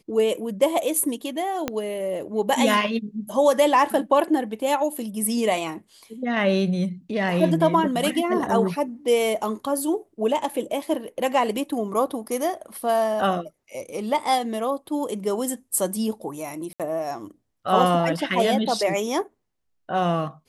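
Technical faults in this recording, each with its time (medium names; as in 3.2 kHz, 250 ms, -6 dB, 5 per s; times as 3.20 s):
1.68 s: pop -10 dBFS
16.73–16.80 s: dropout 67 ms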